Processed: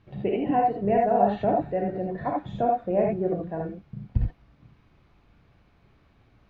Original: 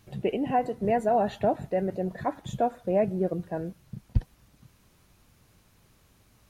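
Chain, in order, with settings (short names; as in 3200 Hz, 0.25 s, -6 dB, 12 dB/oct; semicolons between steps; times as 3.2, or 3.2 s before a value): air absorption 320 m; non-linear reverb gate 0.1 s rising, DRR -1 dB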